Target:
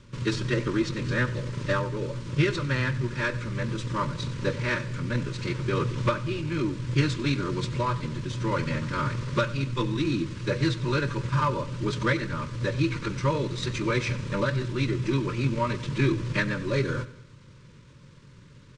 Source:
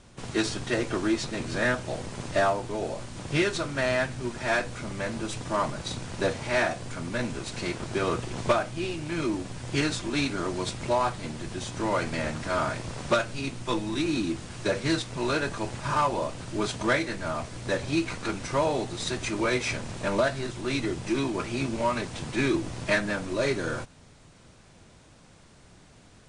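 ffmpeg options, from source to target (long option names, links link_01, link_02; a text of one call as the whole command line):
ffmpeg -i in.wav -filter_complex "[0:a]lowpass=5600,atempo=1.4,asuperstop=centerf=730:order=12:qfactor=2.5,equalizer=frequency=130:width_type=o:width=0.57:gain=11,asplit=2[link_01][link_02];[link_02]aecho=0:1:95|190|285|380:0.133|0.064|0.0307|0.0147[link_03];[link_01][link_03]amix=inputs=2:normalize=0" out.wav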